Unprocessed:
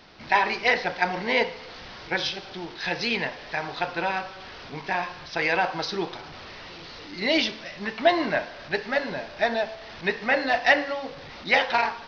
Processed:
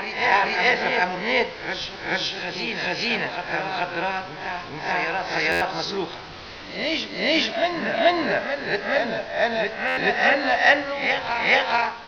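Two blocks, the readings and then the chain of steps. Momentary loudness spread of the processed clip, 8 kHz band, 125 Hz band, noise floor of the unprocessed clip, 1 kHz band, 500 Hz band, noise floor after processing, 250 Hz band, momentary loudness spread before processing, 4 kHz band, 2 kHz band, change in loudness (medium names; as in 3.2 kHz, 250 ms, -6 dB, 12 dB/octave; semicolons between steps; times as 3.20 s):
10 LU, no reading, +2.5 dB, -42 dBFS, +3.0 dB, +3.0 dB, -38 dBFS, +2.5 dB, 17 LU, +4.0 dB, +4.0 dB, +3.0 dB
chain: reverse spectral sustain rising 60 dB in 0.47 s; reverse echo 432 ms -4.5 dB; buffer glitch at 5.51/9.87 s, samples 512, times 8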